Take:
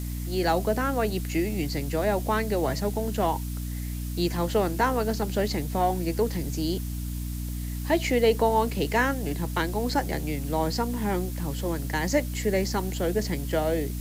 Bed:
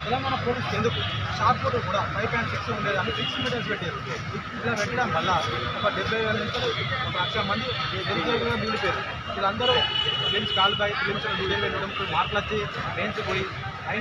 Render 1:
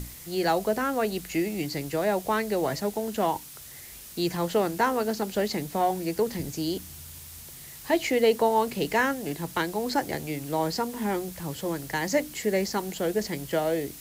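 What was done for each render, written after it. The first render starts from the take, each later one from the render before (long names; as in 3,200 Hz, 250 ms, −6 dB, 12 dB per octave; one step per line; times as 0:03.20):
mains-hum notches 60/120/180/240/300 Hz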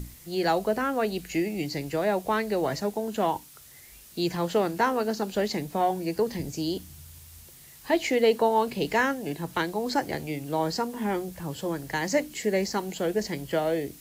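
noise reduction from a noise print 6 dB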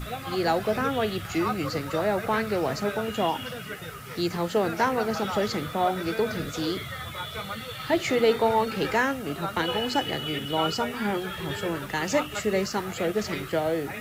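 mix in bed −9 dB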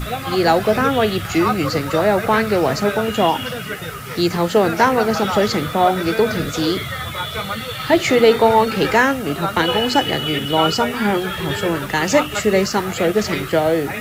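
level +9.5 dB
brickwall limiter −2 dBFS, peak gain reduction 1 dB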